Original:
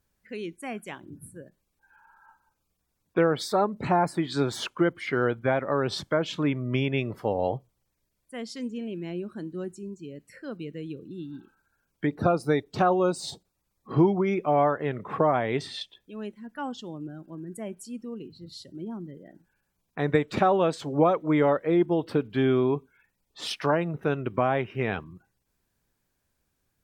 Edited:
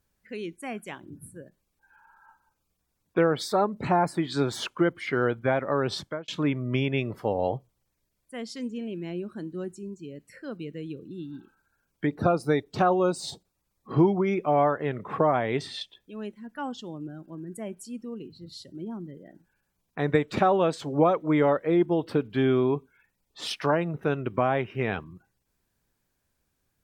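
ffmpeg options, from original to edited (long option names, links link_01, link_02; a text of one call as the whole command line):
ffmpeg -i in.wav -filter_complex "[0:a]asplit=2[link_01][link_02];[link_01]atrim=end=6.28,asetpts=PTS-STARTPTS,afade=type=out:start_time=5.93:duration=0.35[link_03];[link_02]atrim=start=6.28,asetpts=PTS-STARTPTS,afade=type=in:duration=0.004:curve=hsin[link_04];[link_03][link_04]concat=n=2:v=0:a=1" out.wav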